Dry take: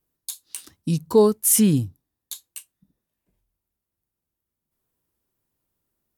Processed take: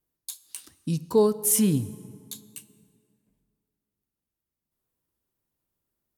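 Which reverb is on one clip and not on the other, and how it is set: plate-style reverb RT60 2.4 s, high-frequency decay 0.6×, DRR 15.5 dB; trim -4.5 dB

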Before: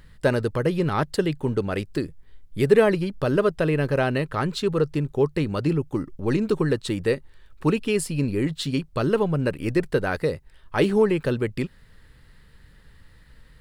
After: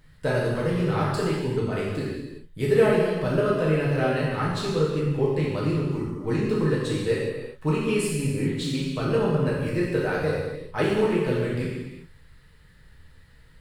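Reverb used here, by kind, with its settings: gated-style reverb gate 440 ms falling, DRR -7 dB; trim -8.5 dB

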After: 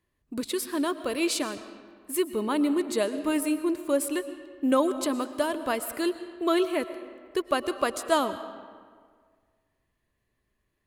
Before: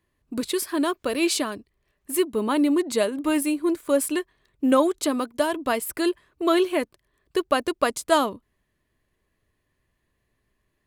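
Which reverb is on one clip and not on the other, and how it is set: algorithmic reverb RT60 1.8 s, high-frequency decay 0.65×, pre-delay 80 ms, DRR 12 dB; trim -4 dB

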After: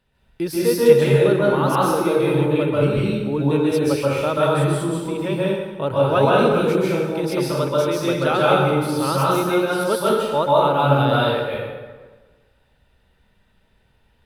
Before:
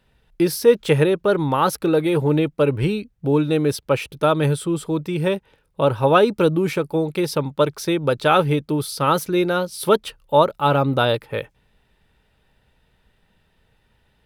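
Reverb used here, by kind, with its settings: plate-style reverb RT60 1.4 s, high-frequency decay 0.7×, pre-delay 120 ms, DRR -6.5 dB; trim -6.5 dB

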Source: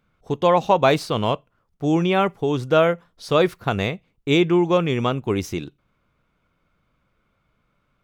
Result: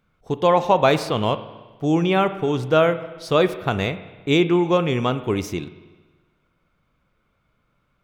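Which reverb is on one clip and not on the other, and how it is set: spring tank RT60 1.3 s, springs 32/47 ms, chirp 25 ms, DRR 12 dB

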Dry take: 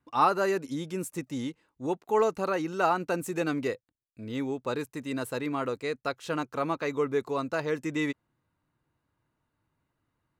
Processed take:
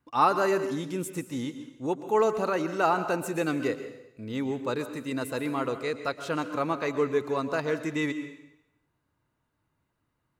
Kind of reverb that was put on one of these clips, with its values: plate-style reverb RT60 0.84 s, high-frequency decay 1×, pre-delay 105 ms, DRR 10 dB; trim +1 dB

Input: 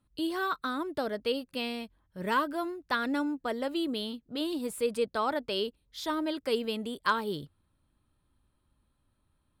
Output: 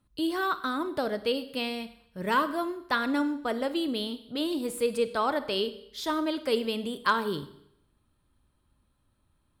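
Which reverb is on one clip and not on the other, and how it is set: Schroeder reverb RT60 0.74 s, combs from 31 ms, DRR 12 dB; trim +2.5 dB

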